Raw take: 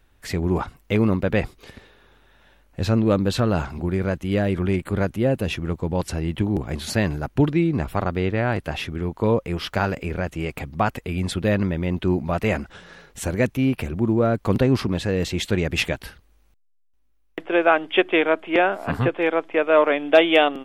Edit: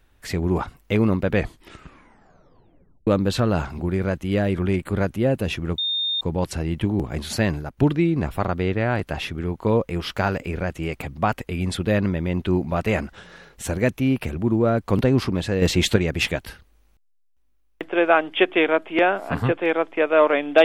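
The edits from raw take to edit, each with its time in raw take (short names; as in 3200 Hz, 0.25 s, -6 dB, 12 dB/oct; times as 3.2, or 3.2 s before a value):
1.31 tape stop 1.76 s
5.78 add tone 3650 Hz -21 dBFS 0.43 s
7.07–7.34 fade out, to -9 dB
15.19–15.53 gain +6 dB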